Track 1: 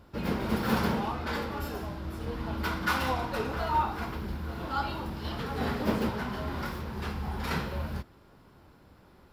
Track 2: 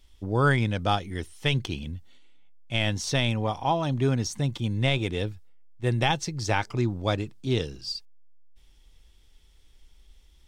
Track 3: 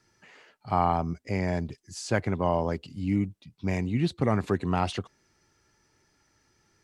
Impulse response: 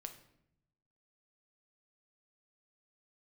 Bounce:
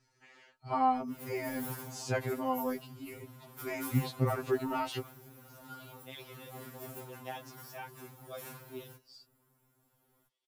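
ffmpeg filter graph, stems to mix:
-filter_complex "[0:a]aexciter=amount=9.7:drive=2.7:freq=6600,adelay=950,volume=0.188[s0];[1:a]highpass=500,tiltshelf=f=970:g=3.5,adelay=1250,volume=0.168[s1];[2:a]volume=0.708,asplit=2[s2][s3];[s3]apad=whole_len=516927[s4];[s1][s4]sidechaincompress=threshold=0.00447:ratio=8:attack=16:release=654[s5];[s0][s5][s2]amix=inputs=3:normalize=0,afftfilt=real='re*2.45*eq(mod(b,6),0)':imag='im*2.45*eq(mod(b,6),0)':win_size=2048:overlap=0.75"

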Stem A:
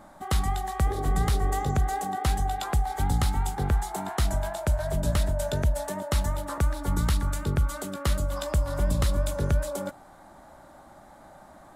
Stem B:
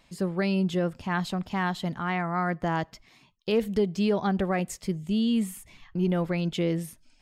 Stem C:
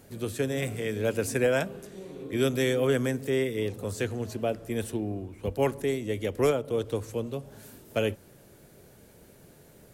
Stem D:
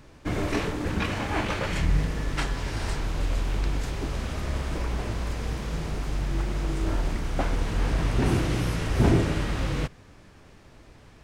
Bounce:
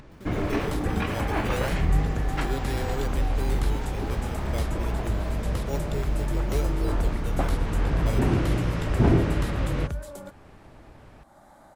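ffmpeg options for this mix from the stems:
-filter_complex "[0:a]adelay=400,volume=0.376[s0];[1:a]acompressor=threshold=0.0355:ratio=6,acrusher=samples=29:mix=1:aa=0.000001:lfo=1:lforange=29:lforate=2.5,volume=0.168[s1];[2:a]acrusher=samples=11:mix=1:aa=0.000001:lfo=1:lforange=11:lforate=0.29,adelay=100,volume=0.355[s2];[3:a]aemphasis=mode=reproduction:type=75kf,volume=1.12[s3];[s0][s1][s2][s3]amix=inputs=4:normalize=0,acompressor=mode=upward:threshold=0.00631:ratio=2.5"

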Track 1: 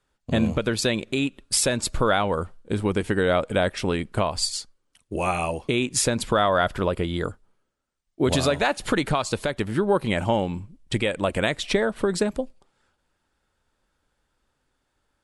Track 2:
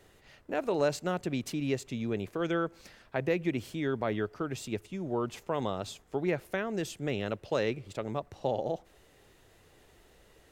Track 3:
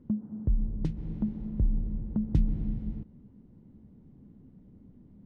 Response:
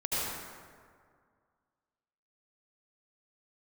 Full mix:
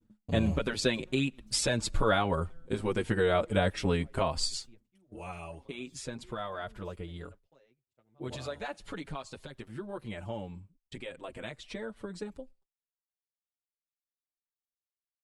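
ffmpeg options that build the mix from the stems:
-filter_complex "[0:a]acrossover=split=8800[s0][s1];[s1]acompressor=threshold=0.00251:ratio=4:attack=1:release=60[s2];[s0][s2]amix=inputs=2:normalize=0,volume=0.75,afade=t=out:st=4.51:d=0.53:silence=0.251189,asplit=2[s3][s4];[1:a]aeval=exprs='val(0)*gte(abs(val(0)),0.00168)':c=same,volume=0.106[s5];[2:a]lowshelf=f=330:g=-3.5,aeval=exprs='val(0)*pow(10,-26*(0.5-0.5*cos(2*PI*2.7*n/s))/20)':c=same,volume=1.12[s6];[s4]apad=whole_len=231890[s7];[s6][s7]sidechaincompress=threshold=0.0141:ratio=3:attack=16:release=793[s8];[s5][s8]amix=inputs=2:normalize=0,acompressor=threshold=0.00178:ratio=5,volume=1[s9];[s3][s9]amix=inputs=2:normalize=0,agate=range=0.0224:threshold=0.00251:ratio=3:detection=peak,lowshelf=f=88:g=5.5,asplit=2[s10][s11];[s11]adelay=6.4,afreqshift=-0.59[s12];[s10][s12]amix=inputs=2:normalize=1"

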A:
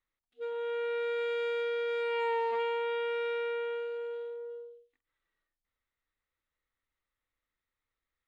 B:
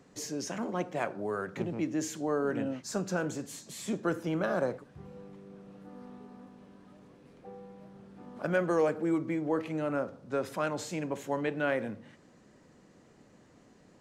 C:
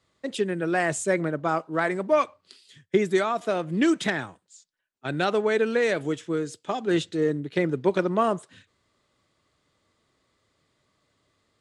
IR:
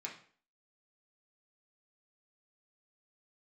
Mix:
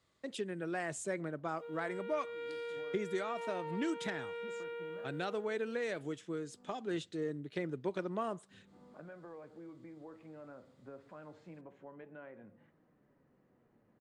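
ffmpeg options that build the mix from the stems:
-filter_complex "[0:a]acrusher=bits=11:mix=0:aa=0.000001,adelay=1200,volume=0.596[s0];[1:a]lowpass=1900,acompressor=threshold=0.00891:ratio=2,flanger=delay=4.7:depth=4.4:regen=68:speed=0.26:shape=triangular,adelay=550,volume=0.447[s1];[2:a]volume=0.531,asplit=2[s2][s3];[s3]apad=whole_len=641706[s4];[s1][s4]sidechaincompress=threshold=0.00631:ratio=8:attack=16:release=185[s5];[s0][s5][s2]amix=inputs=3:normalize=0,acompressor=threshold=0.00355:ratio=1.5"

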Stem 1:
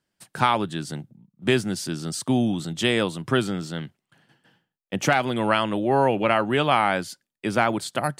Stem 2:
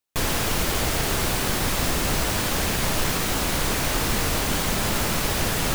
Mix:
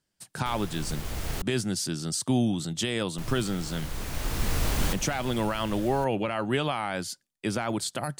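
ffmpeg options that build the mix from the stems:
-filter_complex "[0:a]bass=f=250:g=-2,treble=f=4000:g=10,alimiter=limit=0.224:level=0:latency=1:release=45,highshelf=f=10000:g=-8,volume=0.631,asplit=2[s0][s1];[1:a]adelay=300,volume=0.501,asplit=3[s2][s3][s4];[s2]atrim=end=1.42,asetpts=PTS-STARTPTS,afade=t=out:st=1.416:d=0.004:c=hsin[s5];[s3]atrim=start=1.42:end=3.18,asetpts=PTS-STARTPTS,volume=0[s6];[s4]atrim=start=3.18,asetpts=PTS-STARTPTS,afade=t=in:d=0.004:c=hsin[s7];[s5][s6][s7]concat=n=3:v=0:a=1[s8];[s1]apad=whole_len=266448[s9];[s8][s9]sidechaincompress=threshold=0.0126:ratio=8:attack=16:release=1160[s10];[s0][s10]amix=inputs=2:normalize=0,lowshelf=f=120:g=11"

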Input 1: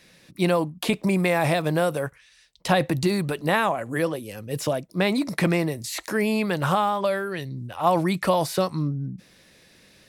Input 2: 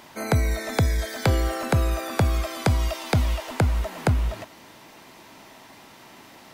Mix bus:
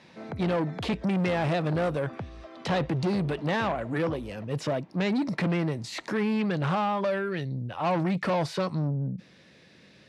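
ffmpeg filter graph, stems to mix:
-filter_complex "[0:a]volume=0.891[s0];[1:a]lowpass=f=1100:p=1,acompressor=threshold=0.0562:ratio=6,volume=0.316[s1];[s0][s1]amix=inputs=2:normalize=0,lowshelf=f=200:g=9,asoftclip=type=tanh:threshold=0.0794,highpass=130,lowpass=4600"

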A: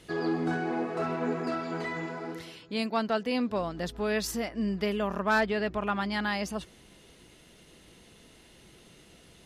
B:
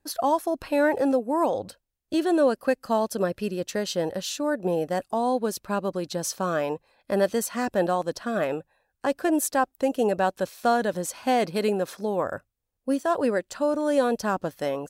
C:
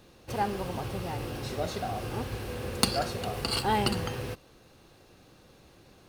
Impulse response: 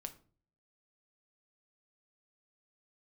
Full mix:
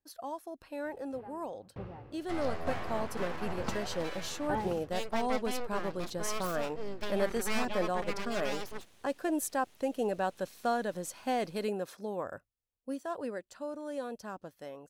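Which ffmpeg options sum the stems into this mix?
-filter_complex "[0:a]aeval=exprs='abs(val(0))':c=same,adelay=2200,volume=0.562[s0];[1:a]dynaudnorm=f=540:g=11:m=3.76,volume=0.141[s1];[2:a]lowpass=1700,aeval=exprs='val(0)*pow(10,-36*if(lt(mod(1.1*n/s,1),2*abs(1.1)/1000),1-mod(1.1*n/s,1)/(2*abs(1.1)/1000),(mod(1.1*n/s,1)-2*abs(1.1)/1000)/(1-2*abs(1.1)/1000))/20)':c=same,adelay=850,volume=0.596[s2];[s0][s1][s2]amix=inputs=3:normalize=0"

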